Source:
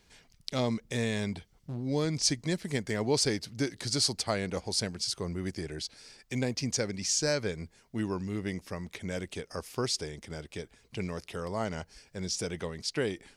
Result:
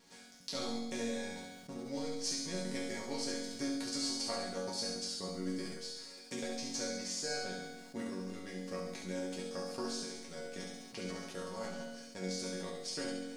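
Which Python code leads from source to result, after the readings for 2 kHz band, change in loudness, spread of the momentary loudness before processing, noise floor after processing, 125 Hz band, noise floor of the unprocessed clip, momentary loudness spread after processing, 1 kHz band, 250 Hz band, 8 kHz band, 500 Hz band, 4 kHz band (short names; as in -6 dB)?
-6.5 dB, -7.0 dB, 13 LU, -54 dBFS, -14.5 dB, -65 dBFS, 9 LU, -5.5 dB, -6.0 dB, -7.0 dB, -7.0 dB, -6.5 dB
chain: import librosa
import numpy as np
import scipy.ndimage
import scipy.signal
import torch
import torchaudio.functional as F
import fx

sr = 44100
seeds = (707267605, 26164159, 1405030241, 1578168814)

p1 = fx.bin_compress(x, sr, power=0.6)
p2 = scipy.signal.sosfilt(scipy.signal.butter(2, 88.0, 'highpass', fs=sr, output='sos'), p1)
p3 = fx.transient(p2, sr, attack_db=8, sustain_db=-10)
p4 = fx.vibrato(p3, sr, rate_hz=0.89, depth_cents=10.0)
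p5 = fx.dmg_crackle(p4, sr, seeds[0], per_s=360.0, level_db=-43.0)
p6 = fx.resonator_bank(p5, sr, root=54, chord='major', decay_s=0.56)
p7 = p6 + fx.room_flutter(p6, sr, wall_m=11.8, rt60_s=0.85, dry=0)
p8 = fx.sustainer(p7, sr, db_per_s=35.0)
y = p8 * librosa.db_to_amplitude(4.0)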